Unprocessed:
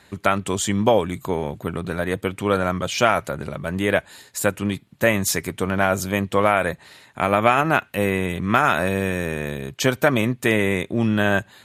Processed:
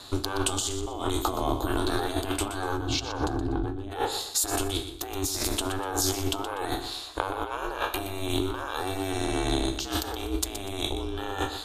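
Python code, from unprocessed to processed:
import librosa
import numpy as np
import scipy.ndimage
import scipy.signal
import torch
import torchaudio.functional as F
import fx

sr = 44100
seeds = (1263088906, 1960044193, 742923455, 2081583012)

p1 = fx.spec_trails(x, sr, decay_s=0.32)
p2 = fx.riaa(p1, sr, side='playback', at=(2.77, 3.9), fade=0.02)
p3 = fx.steep_lowpass(p2, sr, hz=11000.0, slope=36, at=(9.12, 9.75))
p4 = fx.peak_eq(p3, sr, hz=4000.0, db=9.5, octaves=0.9)
p5 = fx.over_compress(p4, sr, threshold_db=-27.0, ratio=-1.0)
p6 = fx.fixed_phaser(p5, sr, hz=840.0, stages=4)
p7 = p6 * np.sin(2.0 * np.pi * 190.0 * np.arange(len(p6)) / sr)
p8 = p7 + fx.echo_feedback(p7, sr, ms=122, feedback_pct=29, wet_db=-10.5, dry=0)
y = p8 * 10.0 ** (3.5 / 20.0)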